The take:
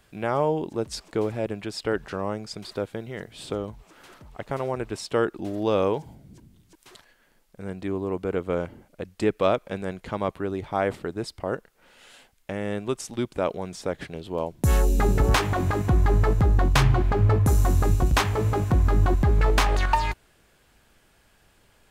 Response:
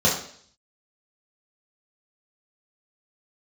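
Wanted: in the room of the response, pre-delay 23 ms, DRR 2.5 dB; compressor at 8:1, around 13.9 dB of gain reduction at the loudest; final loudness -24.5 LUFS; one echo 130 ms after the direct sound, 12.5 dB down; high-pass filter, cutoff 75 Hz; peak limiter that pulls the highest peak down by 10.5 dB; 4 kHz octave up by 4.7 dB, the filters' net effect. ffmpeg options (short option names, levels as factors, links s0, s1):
-filter_complex "[0:a]highpass=75,equalizer=f=4000:t=o:g=6,acompressor=threshold=0.0282:ratio=8,alimiter=level_in=1.33:limit=0.0631:level=0:latency=1,volume=0.75,aecho=1:1:130:0.237,asplit=2[s0][s1];[1:a]atrim=start_sample=2205,adelay=23[s2];[s1][s2]afir=irnorm=-1:irlink=0,volume=0.106[s3];[s0][s3]amix=inputs=2:normalize=0,volume=3.16"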